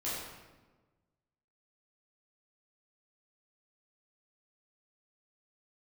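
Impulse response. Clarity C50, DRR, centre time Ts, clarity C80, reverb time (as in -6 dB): -1.0 dB, -9.5 dB, 86 ms, 1.5 dB, 1.3 s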